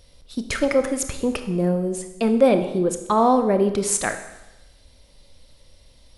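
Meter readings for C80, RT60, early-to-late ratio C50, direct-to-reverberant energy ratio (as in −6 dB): 12.0 dB, 1.0 s, 9.5 dB, 7.5 dB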